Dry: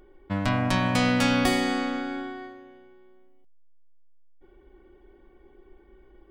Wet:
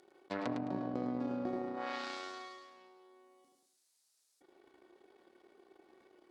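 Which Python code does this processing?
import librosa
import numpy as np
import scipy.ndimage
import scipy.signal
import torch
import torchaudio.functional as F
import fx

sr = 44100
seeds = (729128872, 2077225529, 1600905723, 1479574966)

y = fx.room_early_taps(x, sr, ms=(34, 78), db=(-7.5, -5.5))
y = fx.power_curve(y, sr, exponent=2.0)
y = fx.env_lowpass_down(y, sr, base_hz=380.0, full_db=-31.5)
y = scipy.signal.sosfilt(scipy.signal.butter(2, 300.0, 'highpass', fs=sr, output='sos'), y)
y = fx.band_shelf(y, sr, hz=6500.0, db=11.5, octaves=1.7)
y = fx.echo_feedback(y, sr, ms=106, feedback_pct=26, wet_db=-8)
y = fx.env_flatten(y, sr, amount_pct=50)
y = y * librosa.db_to_amplitude(2.5)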